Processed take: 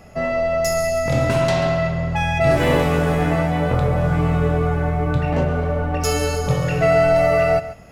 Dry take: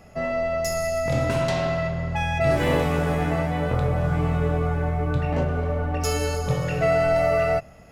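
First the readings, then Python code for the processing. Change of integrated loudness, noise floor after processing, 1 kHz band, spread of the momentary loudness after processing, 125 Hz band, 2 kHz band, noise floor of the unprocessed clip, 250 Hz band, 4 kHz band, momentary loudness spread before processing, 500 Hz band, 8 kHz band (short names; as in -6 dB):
+4.5 dB, -30 dBFS, +4.5 dB, 6 LU, +4.5 dB, +4.5 dB, -46 dBFS, +5.0 dB, +4.5 dB, 5 LU, +5.0 dB, +4.5 dB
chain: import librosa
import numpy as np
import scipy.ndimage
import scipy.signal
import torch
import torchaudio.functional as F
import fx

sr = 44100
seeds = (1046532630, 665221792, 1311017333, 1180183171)

y = x + 10.0 ** (-14.0 / 20.0) * np.pad(x, (int(139 * sr / 1000.0), 0))[:len(x)]
y = y * librosa.db_to_amplitude(4.5)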